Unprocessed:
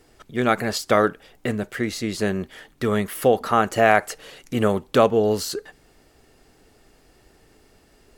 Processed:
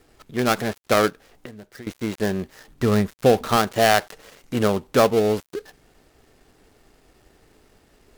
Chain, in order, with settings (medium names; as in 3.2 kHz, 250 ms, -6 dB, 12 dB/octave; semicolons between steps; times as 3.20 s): dead-time distortion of 0.16 ms; 1.09–1.87 s: compression 12:1, threshold -37 dBFS, peak gain reduction 18.5 dB; 2.68–3.57 s: bass shelf 210 Hz +8 dB